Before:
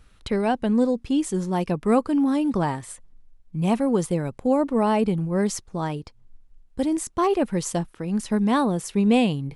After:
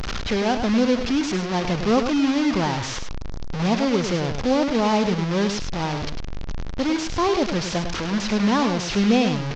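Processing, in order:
linear delta modulator 32 kbit/s, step −21 dBFS
single-tap delay 103 ms −8 dB

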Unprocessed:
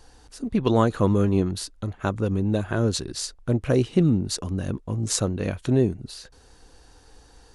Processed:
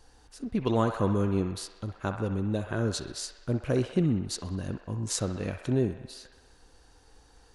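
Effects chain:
delay with a band-pass on its return 64 ms, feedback 71%, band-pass 1,400 Hz, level −6.5 dB
level −6 dB

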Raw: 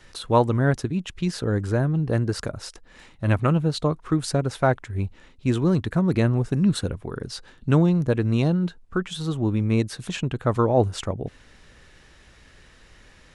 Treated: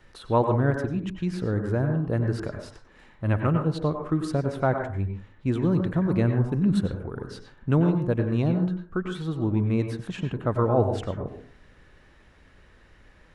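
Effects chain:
parametric band 7,200 Hz −10.5 dB 2.4 octaves
on a send: convolution reverb RT60 0.40 s, pre-delay 87 ms, DRR 4.5 dB
on the sum: level −3 dB

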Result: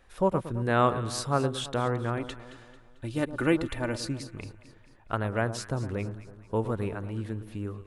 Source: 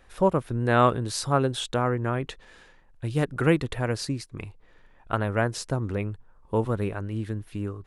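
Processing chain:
0:02.17–0:04.05: comb filter 3.4 ms, depth 52%
on a send: delay that swaps between a low-pass and a high-pass 111 ms, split 1,200 Hz, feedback 68%, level −11.5 dB
on the sum: level −3.5 dB

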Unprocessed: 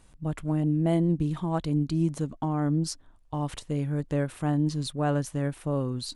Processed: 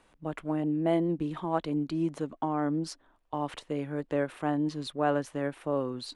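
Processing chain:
three-way crossover with the lows and the highs turned down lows −16 dB, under 270 Hz, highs −12 dB, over 3,600 Hz
level +2 dB

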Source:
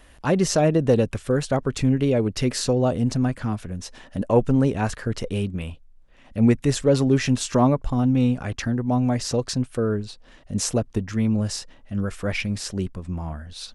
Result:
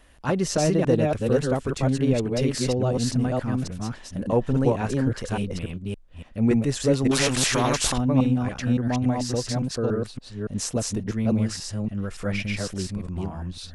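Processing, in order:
delay that plays each chunk backwards 283 ms, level −1 dB
0:07.11–0:07.98: every bin compressed towards the loudest bin 2 to 1
level −4 dB

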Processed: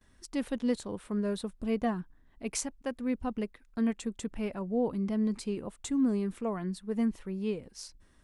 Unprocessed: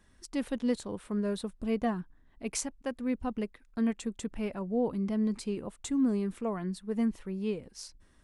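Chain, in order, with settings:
noise gate with hold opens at −58 dBFS

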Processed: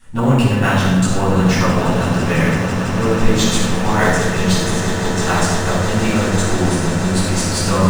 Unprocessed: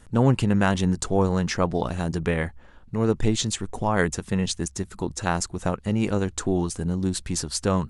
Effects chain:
tilt shelving filter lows −4.5 dB
echo that builds up and dies away 166 ms, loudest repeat 8, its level −14 dB
rectangular room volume 980 cubic metres, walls mixed, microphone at 9.4 metres
in parallel at −11 dB: sample-rate reduction 8,200 Hz, jitter 0%
on the sum: level −9 dB

